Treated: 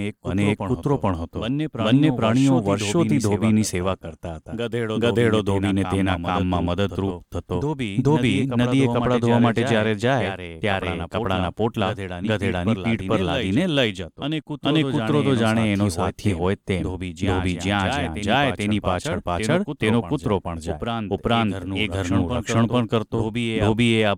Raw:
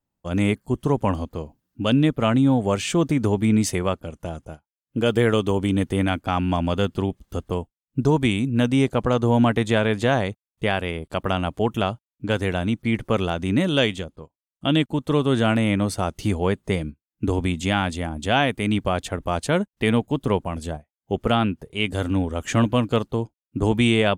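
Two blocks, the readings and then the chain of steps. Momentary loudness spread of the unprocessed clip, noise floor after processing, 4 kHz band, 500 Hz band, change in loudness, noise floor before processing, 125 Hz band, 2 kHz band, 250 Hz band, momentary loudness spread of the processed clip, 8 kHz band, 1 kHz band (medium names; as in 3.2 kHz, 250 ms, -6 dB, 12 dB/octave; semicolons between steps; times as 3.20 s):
11 LU, -47 dBFS, +1.0 dB, +1.0 dB, +0.5 dB, under -85 dBFS, +1.0 dB, +1.0 dB, +1.0 dB, 8 LU, +1.0 dB, +1.0 dB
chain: Chebyshev shaper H 8 -36 dB, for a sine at -6.5 dBFS; reverse echo 435 ms -6 dB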